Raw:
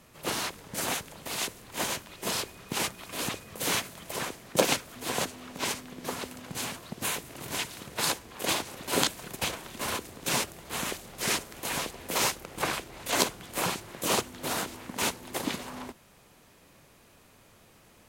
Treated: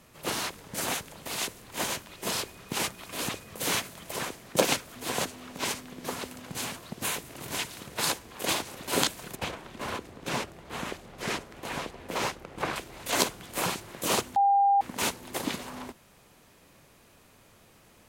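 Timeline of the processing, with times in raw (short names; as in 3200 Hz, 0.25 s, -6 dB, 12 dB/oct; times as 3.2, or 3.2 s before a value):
9.35–12.76 LPF 2200 Hz 6 dB/oct
14.36–14.81 bleep 799 Hz -18.5 dBFS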